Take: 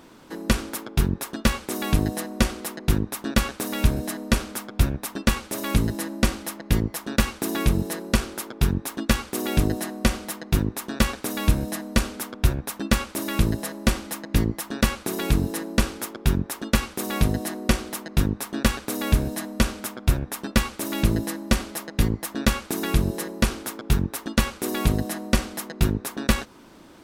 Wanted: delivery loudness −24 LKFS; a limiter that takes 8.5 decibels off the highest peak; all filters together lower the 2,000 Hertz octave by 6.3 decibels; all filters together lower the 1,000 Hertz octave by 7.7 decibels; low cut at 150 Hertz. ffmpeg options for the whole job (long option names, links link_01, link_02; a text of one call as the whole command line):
ffmpeg -i in.wav -af "highpass=150,equalizer=frequency=1000:width_type=o:gain=-8.5,equalizer=frequency=2000:width_type=o:gain=-5.5,volume=7dB,alimiter=limit=-9.5dB:level=0:latency=1" out.wav